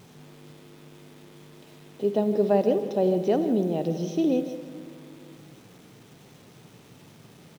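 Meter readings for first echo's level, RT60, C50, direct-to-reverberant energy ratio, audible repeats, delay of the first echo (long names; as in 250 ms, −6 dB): −14.5 dB, 2.2 s, 9.5 dB, 9.5 dB, 1, 162 ms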